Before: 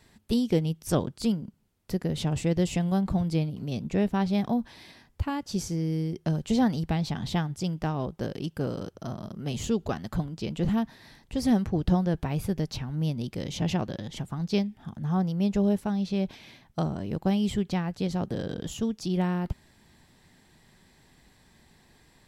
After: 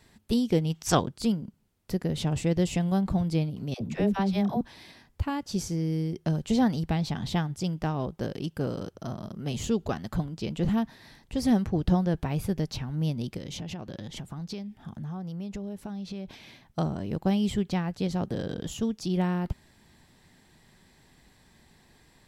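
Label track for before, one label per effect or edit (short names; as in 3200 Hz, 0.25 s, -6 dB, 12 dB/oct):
0.700000	1.000000	spectral gain 650–8200 Hz +9 dB
3.740000	4.610000	dispersion lows, late by 69 ms, half as late at 540 Hz
13.370000	16.280000	compressor, threshold -33 dBFS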